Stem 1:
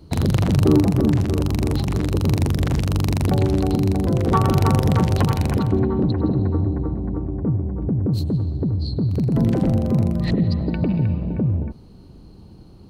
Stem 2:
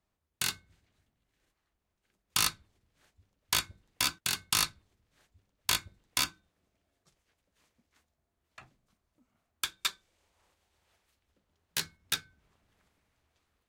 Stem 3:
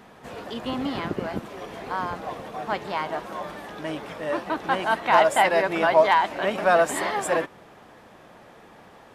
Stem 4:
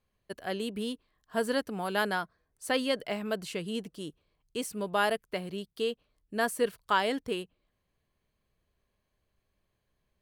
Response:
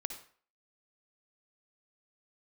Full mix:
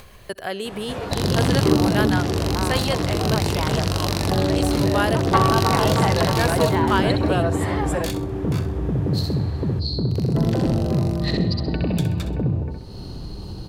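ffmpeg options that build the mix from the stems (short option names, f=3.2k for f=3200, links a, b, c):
-filter_complex "[0:a]equalizer=f=4.6k:w=1.5:g=6.5,bandreject=f=2.3k:w=14,acrossover=split=140|3000[a][b][c];[a]acompressor=threshold=-27dB:ratio=6[d];[d][b][c]amix=inputs=3:normalize=0,adelay=1000,volume=1dB,asplit=2[e][f];[f]volume=-3.5dB[g];[1:a]alimiter=limit=-21.5dB:level=0:latency=1:release=71,acrossover=split=2000[h][i];[h]aeval=exprs='val(0)*(1-0.7/2+0.7/2*cos(2*PI*1.3*n/s))':c=same[j];[i]aeval=exprs='val(0)*(1-0.7/2-0.7/2*cos(2*PI*1.3*n/s))':c=same[k];[j][k]amix=inputs=2:normalize=0,adelay=2350,volume=3dB,asplit=2[l][m];[m]volume=-11.5dB[n];[2:a]lowshelf=f=370:g=11.5,acompressor=threshold=-32dB:ratio=2.5,adelay=650,volume=1dB,asplit=2[o][p];[p]volume=-5.5dB[q];[3:a]volume=2.5dB,asplit=2[r][s];[s]volume=-11.5dB[t];[4:a]atrim=start_sample=2205[u];[q][t]amix=inputs=2:normalize=0[v];[v][u]afir=irnorm=-1:irlink=0[w];[g][n]amix=inputs=2:normalize=0,aecho=0:1:65|130|195|260|325:1|0.34|0.116|0.0393|0.0134[x];[e][l][o][r][w][x]amix=inputs=6:normalize=0,equalizer=f=230:t=o:w=0.95:g=-6,acompressor=mode=upward:threshold=-22dB:ratio=2.5"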